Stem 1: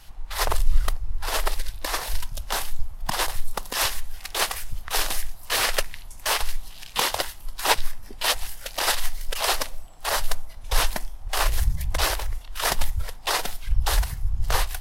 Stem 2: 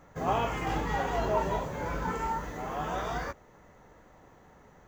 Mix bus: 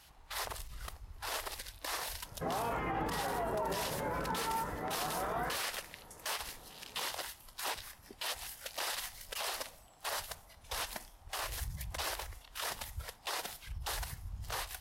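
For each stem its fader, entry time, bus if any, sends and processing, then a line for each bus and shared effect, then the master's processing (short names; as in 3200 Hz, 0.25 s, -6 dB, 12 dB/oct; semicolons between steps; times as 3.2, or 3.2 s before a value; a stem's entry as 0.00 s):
-7.0 dB, 0.00 s, no send, limiter -14 dBFS, peak gain reduction 9.5 dB
+0.5 dB, 2.25 s, no send, LPF 2000 Hz 12 dB/oct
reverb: off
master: HPF 59 Hz 12 dB/oct; low shelf 230 Hz -5 dB; limiter -27 dBFS, peak gain reduction 11.5 dB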